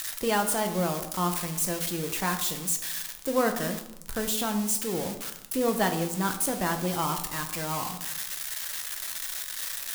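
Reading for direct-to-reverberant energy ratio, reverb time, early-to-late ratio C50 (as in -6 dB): 5.0 dB, 0.85 s, 10.0 dB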